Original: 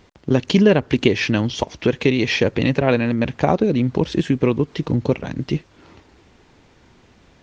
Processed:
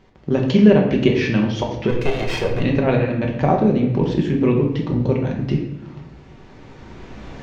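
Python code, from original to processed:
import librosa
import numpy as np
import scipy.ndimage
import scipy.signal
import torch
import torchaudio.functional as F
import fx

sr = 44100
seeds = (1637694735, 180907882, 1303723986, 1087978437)

y = fx.lower_of_two(x, sr, delay_ms=1.9, at=(1.88, 2.59), fade=0.02)
y = fx.recorder_agc(y, sr, target_db=-12.0, rise_db_per_s=9.2, max_gain_db=30)
y = fx.high_shelf(y, sr, hz=3700.0, db=-10.0)
y = fx.room_shoebox(y, sr, seeds[0], volume_m3=280.0, walls='mixed', distance_m=1.1)
y = y * 10.0 ** (-3.0 / 20.0)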